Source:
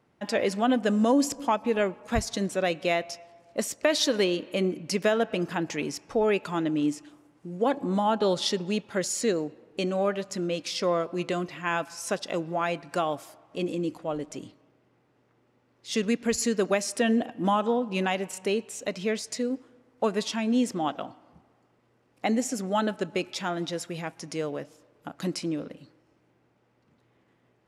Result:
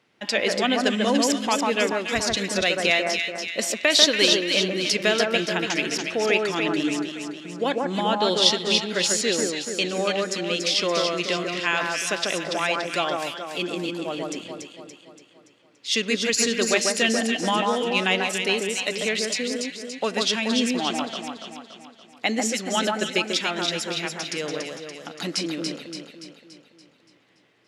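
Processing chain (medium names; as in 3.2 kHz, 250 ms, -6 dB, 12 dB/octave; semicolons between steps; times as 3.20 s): frequency weighting D; on a send: echo whose repeats swap between lows and highs 143 ms, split 1.7 kHz, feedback 71%, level -2 dB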